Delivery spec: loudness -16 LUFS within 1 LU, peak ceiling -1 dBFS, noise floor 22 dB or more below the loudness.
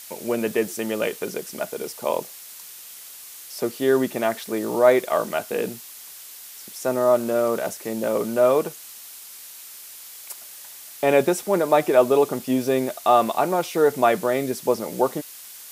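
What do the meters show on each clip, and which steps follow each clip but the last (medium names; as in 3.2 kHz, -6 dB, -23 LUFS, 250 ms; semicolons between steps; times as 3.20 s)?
noise floor -42 dBFS; noise floor target -45 dBFS; loudness -22.5 LUFS; peak level -4.0 dBFS; loudness target -16.0 LUFS
-> noise reduction 6 dB, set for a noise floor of -42 dBFS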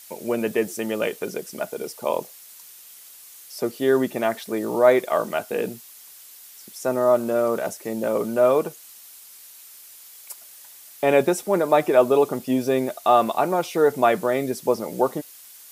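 noise floor -46 dBFS; loudness -22.5 LUFS; peak level -4.0 dBFS; loudness target -16.0 LUFS
-> trim +6.5 dB; peak limiter -1 dBFS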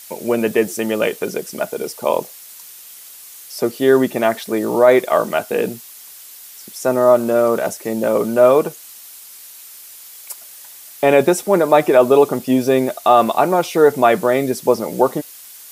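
loudness -16.5 LUFS; peak level -1.0 dBFS; noise floor -39 dBFS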